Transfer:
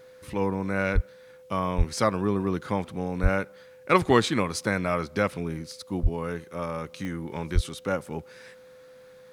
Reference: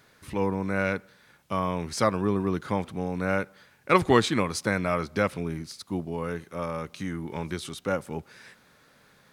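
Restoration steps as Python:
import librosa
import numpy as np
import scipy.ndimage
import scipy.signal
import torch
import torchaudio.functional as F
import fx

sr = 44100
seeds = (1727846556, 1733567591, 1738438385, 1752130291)

y = fx.fix_declick_ar(x, sr, threshold=10.0)
y = fx.notch(y, sr, hz=510.0, q=30.0)
y = fx.fix_deplosive(y, sr, at_s=(0.94, 1.77, 3.22, 6.02, 7.54))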